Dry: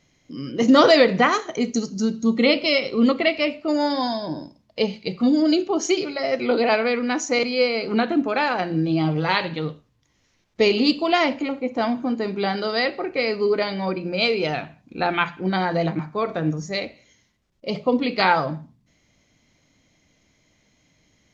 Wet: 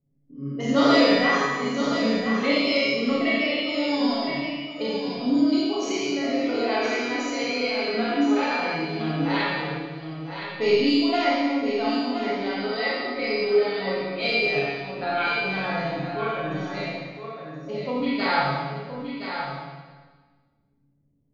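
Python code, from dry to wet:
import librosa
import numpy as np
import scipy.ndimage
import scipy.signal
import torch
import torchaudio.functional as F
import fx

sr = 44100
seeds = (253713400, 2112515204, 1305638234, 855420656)

p1 = fx.env_lowpass(x, sr, base_hz=310.0, full_db=-18.0)
p2 = fx.comb_fb(p1, sr, f0_hz=140.0, decay_s=0.29, harmonics='all', damping=0.0, mix_pct=90)
p3 = p2 + fx.echo_single(p2, sr, ms=1019, db=-8.0, dry=0)
y = fx.rev_schroeder(p3, sr, rt60_s=1.4, comb_ms=28, drr_db=-6.5)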